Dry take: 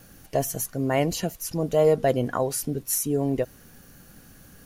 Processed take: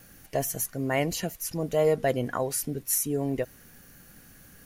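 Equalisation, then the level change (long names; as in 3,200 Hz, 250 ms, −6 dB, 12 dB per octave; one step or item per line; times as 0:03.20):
parametric band 2,000 Hz +5.5 dB 0.8 octaves
high-shelf EQ 7,000 Hz +5 dB
−4.0 dB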